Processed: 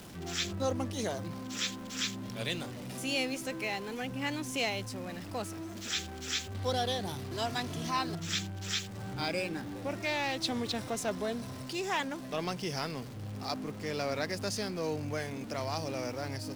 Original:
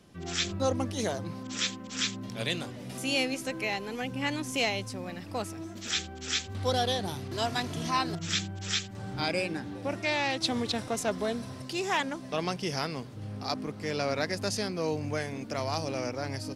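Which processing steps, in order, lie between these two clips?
converter with a step at zero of −39.5 dBFS
level −4.5 dB

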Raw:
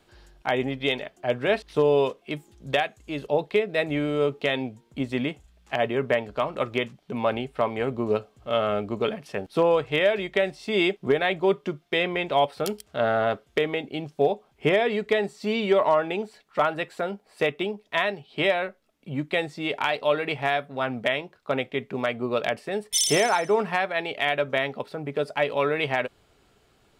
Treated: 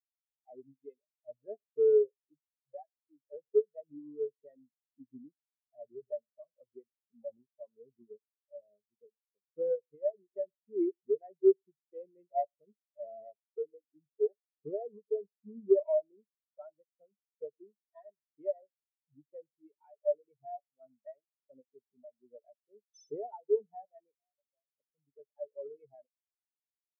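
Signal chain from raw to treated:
each half-wave held at its own peak
0:08.08–0:10.14: power curve on the samples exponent 1.4
0:24.15–0:24.77: downward compressor 5 to 1, threshold −29 dBFS, peak gain reduction 12.5 dB
on a send: single-tap delay 108 ms −16.5 dB
on the sum: every bin expanded away from the loudest bin 4 to 1
level −4 dB

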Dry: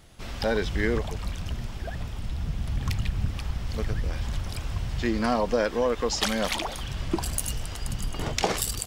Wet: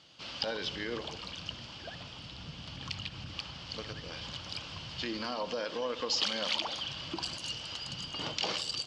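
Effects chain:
brickwall limiter −19 dBFS, peak gain reduction 7.5 dB
loudspeaker in its box 200–6,300 Hz, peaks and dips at 220 Hz −7 dB, 400 Hz −8 dB, 710 Hz −5 dB, 1,900 Hz −5 dB, 3,000 Hz +10 dB, 4,600 Hz +9 dB
feedback echo with a low-pass in the loop 64 ms, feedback 75%, low-pass 1,200 Hz, level −13 dB
level −3.5 dB

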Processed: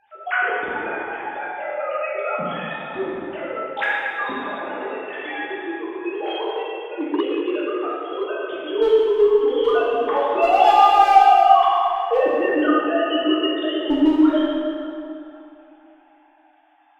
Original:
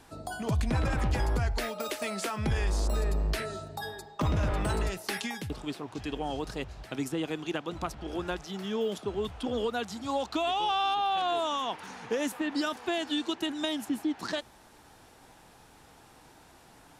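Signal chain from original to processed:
three sine waves on the formant tracks
noise reduction from a noise print of the clip's start 6 dB
asymmetric clip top −20.5 dBFS
dense smooth reverb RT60 2.8 s, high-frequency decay 0.7×, DRR −7.5 dB
0:06.13–0:08.29: saturating transformer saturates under 650 Hz
level +3.5 dB

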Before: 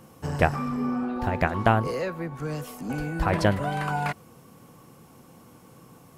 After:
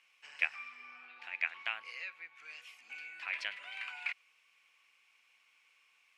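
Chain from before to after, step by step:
four-pole ladder band-pass 2,600 Hz, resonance 70%
level +3.5 dB

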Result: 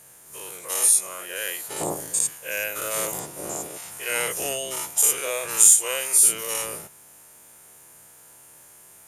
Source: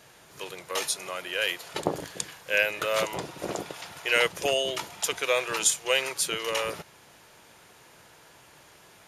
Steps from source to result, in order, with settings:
every bin's largest magnitude spread in time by 120 ms
high shelf with overshoot 6,400 Hz +14 dB, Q 1.5
in parallel at −6 dB: bit-depth reduction 8 bits, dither none
on the sum: level −11 dB

